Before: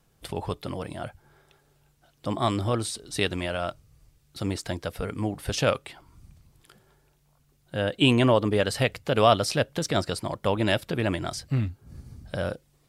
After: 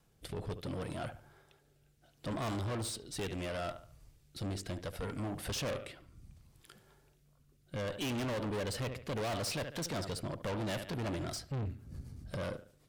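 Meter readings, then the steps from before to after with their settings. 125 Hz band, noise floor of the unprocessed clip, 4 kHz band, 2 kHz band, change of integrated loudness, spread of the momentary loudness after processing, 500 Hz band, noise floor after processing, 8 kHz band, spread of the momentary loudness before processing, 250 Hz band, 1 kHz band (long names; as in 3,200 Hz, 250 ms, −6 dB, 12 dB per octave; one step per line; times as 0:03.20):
−10.0 dB, −65 dBFS, −12.0 dB, −12.5 dB, −12.0 dB, 9 LU, −13.0 dB, −69 dBFS, −7.0 dB, 16 LU, −11.5 dB, −13.5 dB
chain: rotating-speaker cabinet horn 0.7 Hz, later 8 Hz, at 0:10.17
delay with a low-pass on its return 72 ms, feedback 33%, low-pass 3,200 Hz, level −16 dB
tube saturation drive 34 dB, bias 0.35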